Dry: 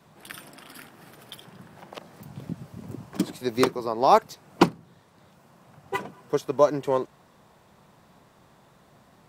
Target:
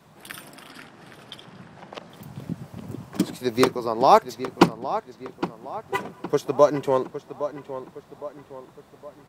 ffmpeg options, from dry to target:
-filter_complex "[0:a]asettb=1/sr,asplit=3[a][b][c];[a]atrim=end=0.694[d];[b]atrim=start=0.69:end=2.1,asetpts=PTS-STARTPTS,afade=t=in:d=0.004:c=qsin,afade=t=out:st=1.406:d=0.004:c=qsin,lowpass=6.8k[e];[c]atrim=start=2.096[f];[d][e]acrossfade=d=0.004:c1=hsin:c2=qsin[g];[g][f]acrossfade=d=0.004:c1=qsin:c2=hsin,asplit=2[h][i];[i]adelay=813,lowpass=f=3.2k:p=1,volume=-12dB,asplit=2[j][k];[k]adelay=813,lowpass=f=3.2k:p=1,volume=0.46,asplit=2[l][m];[m]adelay=813,lowpass=f=3.2k:p=1,volume=0.46,asplit=2[n][o];[o]adelay=813,lowpass=f=3.2k:p=1,volume=0.46,asplit=2[p][q];[q]adelay=813,lowpass=f=3.2k:p=1,volume=0.46[r];[h][j][l][n][p][r]amix=inputs=6:normalize=0,volume=2.5dB"

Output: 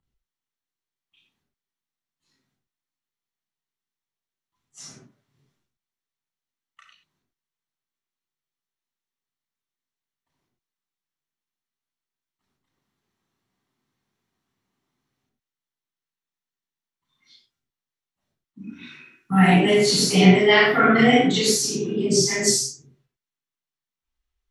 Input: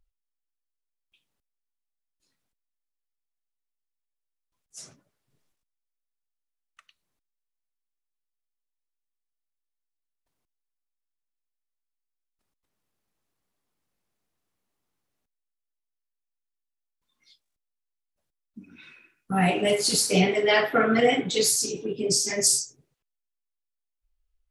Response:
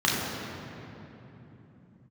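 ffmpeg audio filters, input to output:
-filter_complex "[0:a]asettb=1/sr,asplit=3[a][b][c];[a]atrim=end=18.694[d];[b]atrim=start=18.69:end=19.47,asetpts=PTS-STARTPTS,afade=t=in:d=0.004:c=qsin,afade=t=out:st=0.776:d=0.004:c=qsin,equalizer=f=11k:t=o:w=2.5:g=5.5[e];[c]atrim=start=19.466[f];[d][e]acrossfade=d=0.004:c1=hsin:c2=qsin[g];[g][f]acrossfade=d=0.004:c1=qsin:c2=hsin[h];[1:a]atrim=start_sample=2205,atrim=end_sample=6174[i];[h][i]afir=irnorm=-1:irlink=0,volume=-8.5dB"

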